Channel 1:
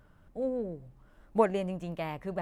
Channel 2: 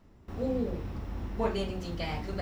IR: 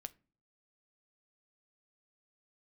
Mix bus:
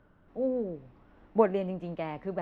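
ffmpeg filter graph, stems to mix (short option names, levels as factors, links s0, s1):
-filter_complex "[0:a]lowshelf=f=390:g=10.5,volume=0.794[s0];[1:a]volume=0.158[s1];[s0][s1]amix=inputs=2:normalize=0,acrossover=split=220 3700:gain=0.224 1 0.112[s2][s3][s4];[s2][s3][s4]amix=inputs=3:normalize=0"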